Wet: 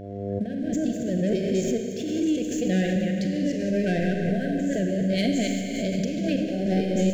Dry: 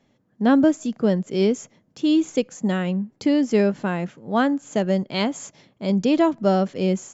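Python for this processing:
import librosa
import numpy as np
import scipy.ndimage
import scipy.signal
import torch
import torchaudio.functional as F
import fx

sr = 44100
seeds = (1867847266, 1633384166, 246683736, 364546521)

y = fx.reverse_delay(x, sr, ms=148, wet_db=-5.5)
y = fx.high_shelf(y, sr, hz=5200.0, db=-7.5)
y = fx.over_compress(y, sr, threshold_db=-23.0, ratio=-0.5)
y = fx.leveller(y, sr, passes=2)
y = fx.dmg_buzz(y, sr, base_hz=100.0, harmonics=9, level_db=-38.0, tilt_db=-2, odd_only=False)
y = fx.brickwall_bandstop(y, sr, low_hz=740.0, high_hz=1500.0)
y = fx.rev_schroeder(y, sr, rt60_s=2.8, comb_ms=32, drr_db=2.5)
y = fx.pre_swell(y, sr, db_per_s=35.0)
y = y * librosa.db_to_amplitude(-8.5)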